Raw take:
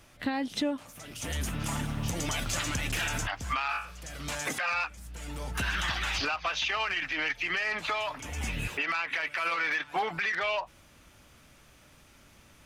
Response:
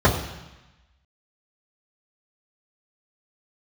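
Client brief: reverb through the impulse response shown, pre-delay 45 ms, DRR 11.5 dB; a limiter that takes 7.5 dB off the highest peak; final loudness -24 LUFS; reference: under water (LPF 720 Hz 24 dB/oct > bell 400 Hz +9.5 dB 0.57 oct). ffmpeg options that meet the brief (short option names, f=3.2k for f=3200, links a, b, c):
-filter_complex "[0:a]alimiter=level_in=4dB:limit=-24dB:level=0:latency=1,volume=-4dB,asplit=2[a][b];[1:a]atrim=start_sample=2205,adelay=45[c];[b][c]afir=irnorm=-1:irlink=0,volume=-32.5dB[d];[a][d]amix=inputs=2:normalize=0,lowpass=f=720:w=0.5412,lowpass=f=720:w=1.3066,equalizer=f=400:t=o:w=0.57:g=9.5,volume=15.5dB"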